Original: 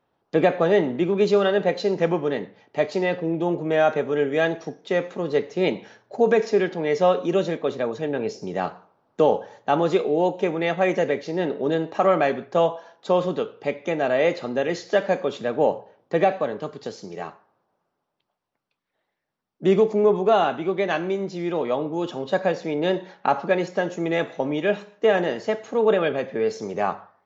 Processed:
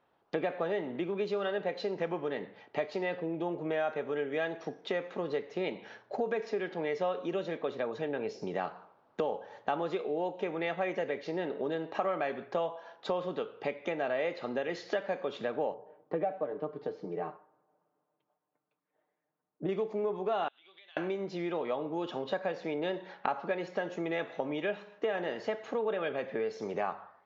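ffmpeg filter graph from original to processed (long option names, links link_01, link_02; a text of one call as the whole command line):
ffmpeg -i in.wav -filter_complex "[0:a]asettb=1/sr,asplit=3[link_01][link_02][link_03];[link_01]atrim=end=15.744[link_04];[link_02]atrim=start=15.74:end=19.69,asetpts=PTS-STARTPTS,afade=type=in:duration=0.004:curve=qsin,afade=type=out:start_time=3.946:duration=0.004:curve=qsin,bandpass=frequency=320:width_type=q:width=0.55,aecho=1:1:6.6:0.67,atrim=end_sample=174195[link_05];[link_03]atrim=start=19.686[link_06];[link_04][link_05]acrossfade=duration=0.004:curve1=hsin:curve2=qsin[link_07];[link_07][link_06]acrossfade=duration=0.004:curve1=qsin:curve2=hsin,asettb=1/sr,asplit=3[link_08][link_09][link_10];[link_08]atrim=end=20.484[link_11];[link_09]atrim=start=20.48:end=20.97,asetpts=PTS-STARTPTS,afade=type=in:duration=0.004:curve=qsin,afade=type=out:start_time=0.486:duration=0.004:curve=qsin,bandpass=frequency=3400:width_type=q:width=4.9,acompressor=threshold=-53dB:ratio=10:attack=3.2:release=140:knee=1:detection=peak[link_12];[link_10]atrim=start=20.966[link_13];[link_11][link_12]acrossfade=duration=0.004:curve1=hsin:curve2=qsin[link_14];[link_14][link_13]acrossfade=duration=0.004:curve1=qsin:curve2=hsin,acompressor=threshold=-31dB:ratio=4,lowpass=3800,lowshelf=frequency=330:gain=-8,volume=2dB" out.wav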